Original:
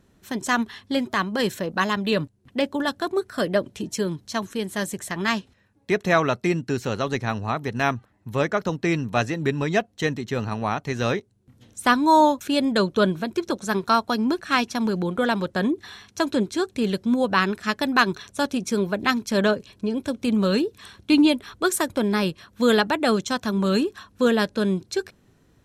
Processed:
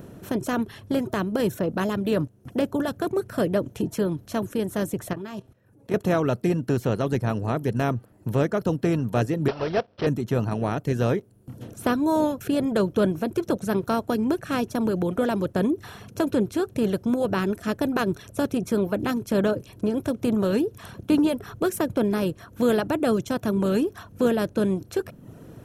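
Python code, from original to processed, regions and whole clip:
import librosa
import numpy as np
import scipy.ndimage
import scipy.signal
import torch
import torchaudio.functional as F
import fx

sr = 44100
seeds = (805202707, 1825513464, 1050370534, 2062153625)

y = fx.chain(x, sr, fx.comb_fb(f0_hz=130.0, decay_s=0.21, harmonics='odd', damping=0.0, mix_pct=60),
    fx.level_steps(step_db=13), at=(5.13, 5.94))
y = fx.chain(y, sr, fx.block_float(bits=3),
    fx.low_shelf_res(hz=360.0, db=-10.0, q=1.5),
    fx.resample_bad(factor=4, down='none', up='filtered'), at=(9.48, 10.07))
y = fx.bin_compress(y, sr, power=0.6)
y = fx.dereverb_blind(y, sr, rt60_s=0.71)
y = fx.graphic_eq(y, sr, hz=(125, 250, 1000, 2000, 4000, 8000), db=(5, -4, -10, -10, -11, -10))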